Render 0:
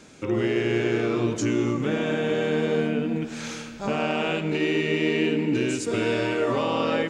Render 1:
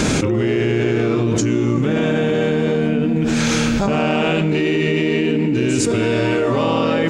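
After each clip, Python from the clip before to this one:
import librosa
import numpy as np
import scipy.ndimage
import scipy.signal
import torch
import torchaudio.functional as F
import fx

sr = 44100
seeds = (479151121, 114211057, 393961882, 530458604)

y = fx.low_shelf(x, sr, hz=220.0, db=8.5)
y = fx.env_flatten(y, sr, amount_pct=100)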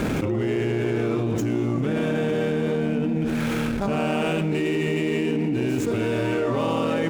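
y = scipy.ndimage.median_filter(x, 9, mode='constant')
y = fx.transformer_sat(y, sr, knee_hz=240.0)
y = y * librosa.db_to_amplitude(-5.5)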